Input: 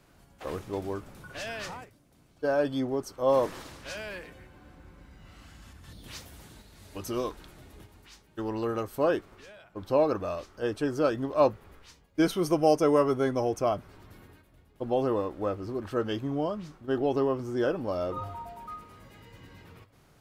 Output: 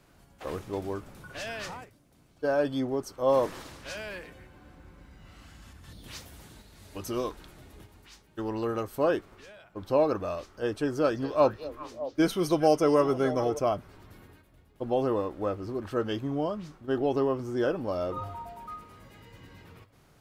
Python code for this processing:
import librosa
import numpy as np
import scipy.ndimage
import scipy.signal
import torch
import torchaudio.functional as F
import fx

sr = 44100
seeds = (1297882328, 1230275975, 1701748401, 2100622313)

y = fx.echo_stepped(x, sr, ms=204, hz=4000.0, octaves=-1.4, feedback_pct=70, wet_db=-6, at=(11.03, 13.58), fade=0.02)